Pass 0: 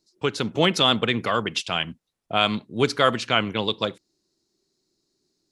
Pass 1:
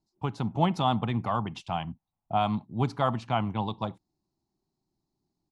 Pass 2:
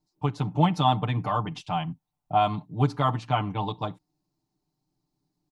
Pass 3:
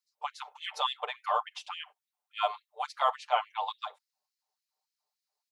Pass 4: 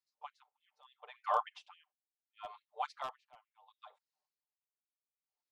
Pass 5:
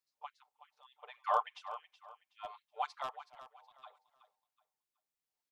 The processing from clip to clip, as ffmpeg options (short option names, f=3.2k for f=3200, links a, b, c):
-af "firequalizer=gain_entry='entry(120,0);entry(470,-18);entry(800,2);entry(1500,-18);entry(5300,-21)':delay=0.05:min_phase=1,volume=2.5dB"
-af "aecho=1:1:6.7:0.9"
-af "afftfilt=real='re*gte(b*sr/1024,410*pow(1800/410,0.5+0.5*sin(2*PI*3.5*pts/sr)))':imag='im*gte(b*sr/1024,410*pow(1800/410,0.5+0.5*sin(2*PI*3.5*pts/sr)))':win_size=1024:overlap=0.75,volume=-1dB"
-af "aemphasis=mode=reproduction:type=50kf,aeval=exprs='0.126*(abs(mod(val(0)/0.126+3,4)-2)-1)':c=same,aeval=exprs='val(0)*pow(10,-34*(0.5-0.5*cos(2*PI*0.72*n/s))/20)':c=same,volume=-2dB"
-af "aecho=1:1:373|746|1119:0.211|0.0592|0.0166,volume=1dB"